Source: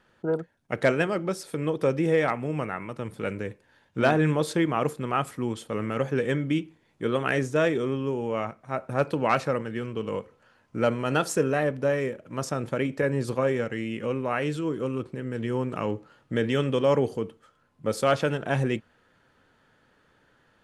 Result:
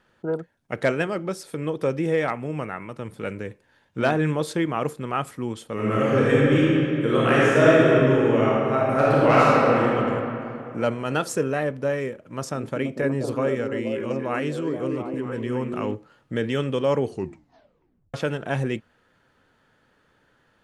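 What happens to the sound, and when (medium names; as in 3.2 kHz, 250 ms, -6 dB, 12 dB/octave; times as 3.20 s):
5.73–9.88 s: reverb throw, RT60 3 s, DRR -8 dB
12.23–15.95 s: repeats whose band climbs or falls 239 ms, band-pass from 280 Hz, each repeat 0.7 oct, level -1 dB
17.06 s: tape stop 1.08 s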